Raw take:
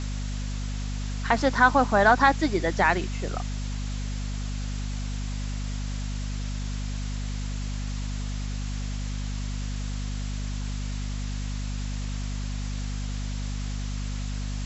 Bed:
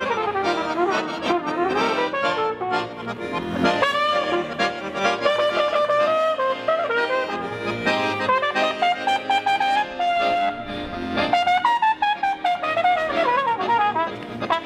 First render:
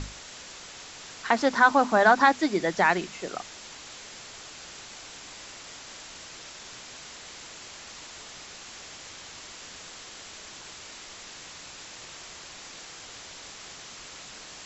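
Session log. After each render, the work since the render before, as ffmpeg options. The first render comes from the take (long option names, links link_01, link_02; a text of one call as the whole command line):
ffmpeg -i in.wav -af "bandreject=frequency=50:width_type=h:width=6,bandreject=frequency=100:width_type=h:width=6,bandreject=frequency=150:width_type=h:width=6,bandreject=frequency=200:width_type=h:width=6,bandreject=frequency=250:width_type=h:width=6" out.wav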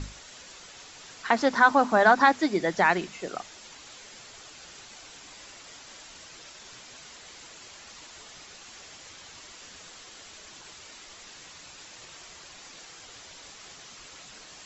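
ffmpeg -i in.wav -af "afftdn=noise_reduction=6:noise_floor=-45" out.wav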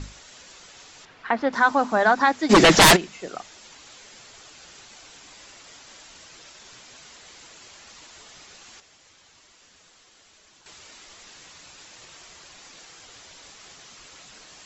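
ffmpeg -i in.wav -filter_complex "[0:a]asettb=1/sr,asplit=3[link_01][link_02][link_03];[link_01]atrim=end=1.054[link_04];[link_02]atrim=start=1.05:end=1.53,asetpts=PTS-STARTPTS,afade=type=in:duration=0.004:curve=qsin,afade=type=out:start_time=0.476:duration=0.004:curve=qsin,lowpass=2600[link_05];[link_03]atrim=start=1.526[link_06];[link_04][link_05]acrossfade=duration=0.004:curve1=hsin:curve2=qsin[link_07];[link_07][link_06]acrossfade=duration=0.004:curve1=qsin:curve2=hsin,asplit=3[link_08][link_09][link_10];[link_08]afade=type=out:start_time=2.49:duration=0.02[link_11];[link_09]aeval=exprs='0.398*sin(PI/2*7.08*val(0)/0.398)':channel_layout=same,afade=type=in:start_time=2.49:duration=0.02,afade=type=out:start_time=2.95:duration=0.02[link_12];[link_10]afade=type=in:start_time=2.95:duration=0.02[link_13];[link_11][link_12][link_13]amix=inputs=3:normalize=0,asplit=3[link_14][link_15][link_16];[link_14]atrim=end=8.802[link_17];[link_15]atrim=start=8.798:end=10.662,asetpts=PTS-STARTPTS,volume=-8.5dB[link_18];[link_16]atrim=start=10.658[link_19];[link_17][link_18]acrossfade=duration=0.004:curve1=hsin:curve2=hsin[link_20];[link_20][link_19]acrossfade=duration=0.004:curve1=hsin:curve2=hsin" out.wav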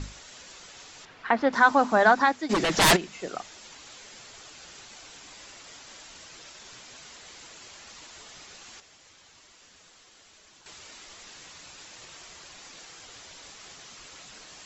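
ffmpeg -i in.wav -filter_complex "[0:a]asplit=3[link_01][link_02][link_03];[link_01]atrim=end=2.57,asetpts=PTS-STARTPTS,afade=type=out:start_time=2.08:duration=0.49:silence=0.251189[link_04];[link_02]atrim=start=2.57:end=2.71,asetpts=PTS-STARTPTS,volume=-12dB[link_05];[link_03]atrim=start=2.71,asetpts=PTS-STARTPTS,afade=type=in:duration=0.49:silence=0.251189[link_06];[link_04][link_05][link_06]concat=n=3:v=0:a=1" out.wav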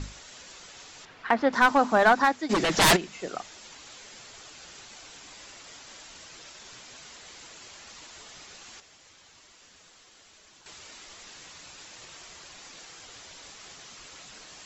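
ffmpeg -i in.wav -af "aeval=exprs='clip(val(0),-1,0.168)':channel_layout=same" out.wav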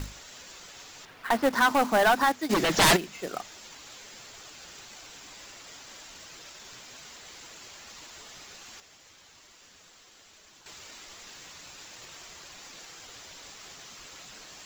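ffmpeg -i in.wav -af "asoftclip=type=hard:threshold=-14dB,acrusher=bits=3:mode=log:mix=0:aa=0.000001" out.wav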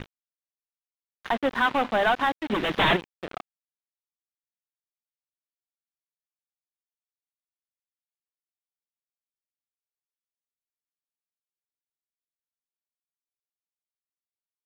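ffmpeg -i in.wav -af "aresample=8000,acrusher=bits=4:mix=0:aa=0.5,aresample=44100,aeval=exprs='sgn(val(0))*max(abs(val(0))-0.00668,0)':channel_layout=same" out.wav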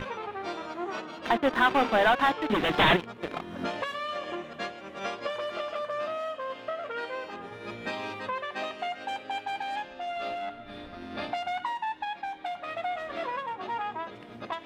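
ffmpeg -i in.wav -i bed.wav -filter_complex "[1:a]volume=-13.5dB[link_01];[0:a][link_01]amix=inputs=2:normalize=0" out.wav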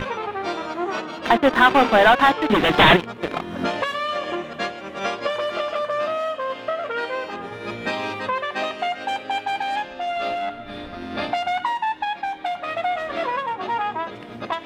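ffmpeg -i in.wav -af "volume=8.5dB" out.wav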